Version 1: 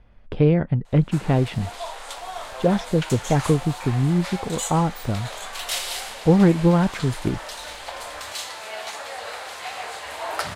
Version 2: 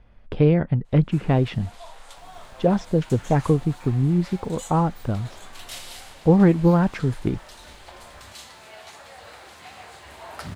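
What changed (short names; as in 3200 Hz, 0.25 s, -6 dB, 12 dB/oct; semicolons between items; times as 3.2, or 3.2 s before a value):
first sound -10.5 dB; second sound +3.5 dB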